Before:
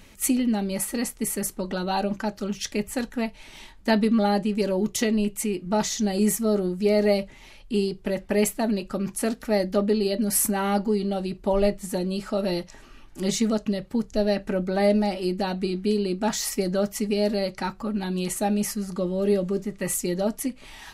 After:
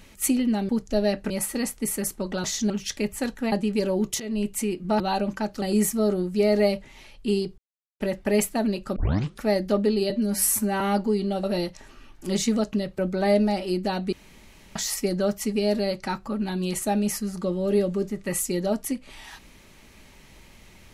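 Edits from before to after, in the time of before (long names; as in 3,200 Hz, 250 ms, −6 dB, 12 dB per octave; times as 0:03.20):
0:01.83–0:02.45: swap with 0:05.82–0:06.08
0:03.27–0:04.34: remove
0:05.02–0:05.29: fade in, from −17.5 dB
0:08.04: splice in silence 0.42 s
0:09.00: tape start 0.46 s
0:10.14–0:10.61: time-stretch 1.5×
0:11.24–0:12.37: remove
0:13.92–0:14.53: move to 0:00.69
0:15.67–0:16.30: fill with room tone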